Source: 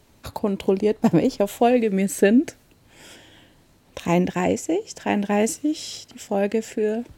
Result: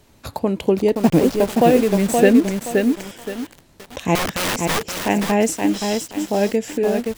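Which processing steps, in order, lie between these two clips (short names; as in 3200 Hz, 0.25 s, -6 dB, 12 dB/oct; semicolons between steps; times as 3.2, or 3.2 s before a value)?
0.95–2.17 level-crossing sampler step -28.5 dBFS; 4.15–4.98 wrapped overs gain 20 dB; lo-fi delay 0.523 s, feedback 35%, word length 6-bit, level -4 dB; gain +3 dB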